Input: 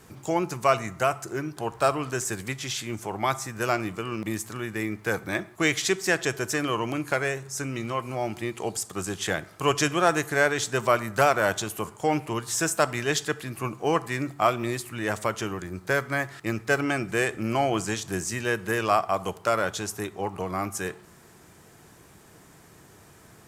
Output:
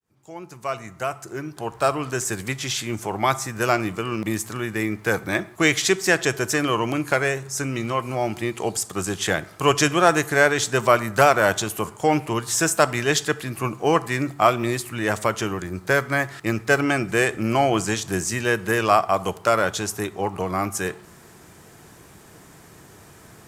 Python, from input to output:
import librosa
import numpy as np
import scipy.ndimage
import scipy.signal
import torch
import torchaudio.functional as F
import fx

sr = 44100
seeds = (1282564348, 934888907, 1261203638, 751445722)

y = fx.fade_in_head(x, sr, length_s=2.64)
y = F.gain(torch.from_numpy(y), 5.0).numpy()